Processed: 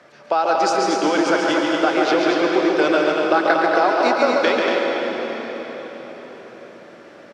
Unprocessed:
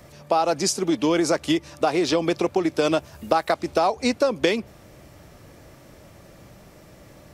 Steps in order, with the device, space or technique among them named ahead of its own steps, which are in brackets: station announcement (band-pass 330–4200 Hz; peaking EQ 1.5 kHz +9 dB 0.35 oct; loudspeakers at several distances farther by 48 m -5 dB, 81 m -5 dB; reverberation RT60 4.9 s, pre-delay 112 ms, DRR 1 dB); trim +1 dB

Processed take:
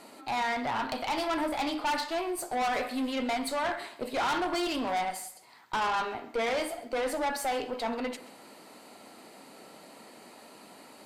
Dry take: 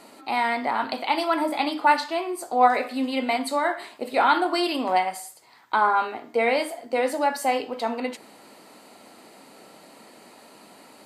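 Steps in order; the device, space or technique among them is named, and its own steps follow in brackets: 2.08–3.12 s: treble shelf 6.8 kHz +5 dB; rockabilly slapback (valve stage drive 25 dB, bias 0.35; tape echo 133 ms, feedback 33%, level -16 dB, low-pass 5.9 kHz); trim -1 dB

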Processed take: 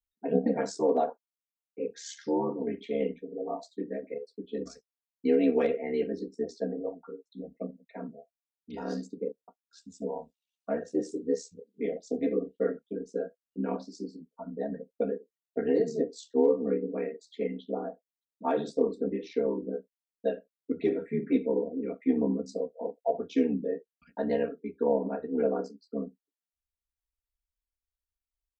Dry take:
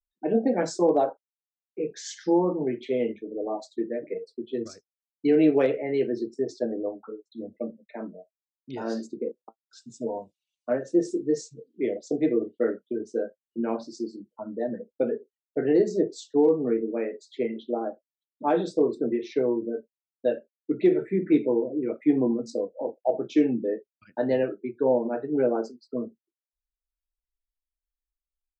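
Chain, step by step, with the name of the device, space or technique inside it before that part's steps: ring-modulated robot voice (ring modulator 36 Hz; comb 4.3 ms, depth 89%); trim -4 dB

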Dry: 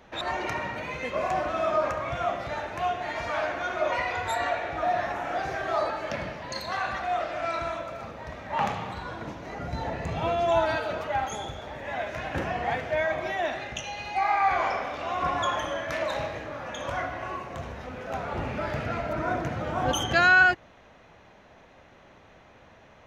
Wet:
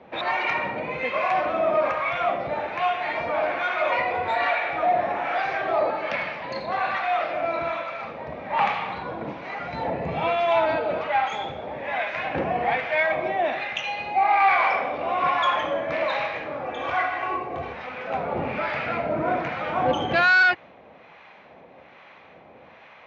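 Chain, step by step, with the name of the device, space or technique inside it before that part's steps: high-pass 72 Hz; 16.64–17.73 s: comb 2.6 ms, depth 56%; guitar amplifier with harmonic tremolo (harmonic tremolo 1.2 Hz, depth 70%, crossover 820 Hz; saturation -21.5 dBFS, distortion -12 dB; cabinet simulation 97–4400 Hz, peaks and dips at 110 Hz -7 dB, 510 Hz +4 dB, 790 Hz +4 dB, 1.1 kHz +3 dB, 2.3 kHz +8 dB); trim +6 dB

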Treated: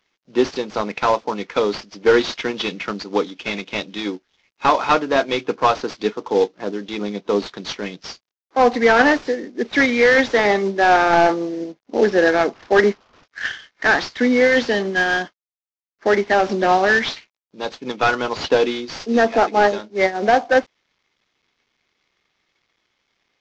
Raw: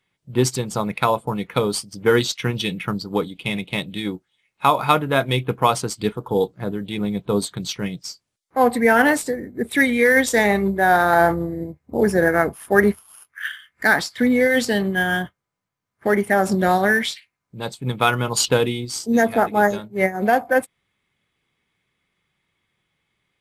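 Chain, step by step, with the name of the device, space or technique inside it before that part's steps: early wireless headset (high-pass 250 Hz 24 dB/octave; CVSD coder 32 kbps); trim +3.5 dB

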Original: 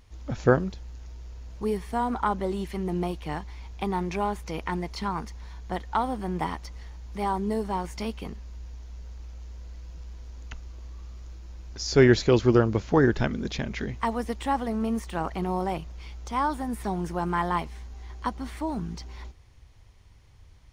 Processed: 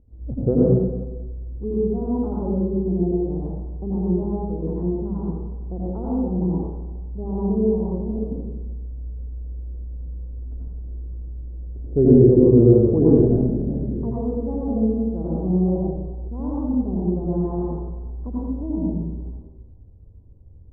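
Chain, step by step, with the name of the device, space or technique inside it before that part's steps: next room (low-pass 500 Hz 24 dB/octave; reverberation RT60 1.2 s, pre-delay 79 ms, DRR -7 dB)

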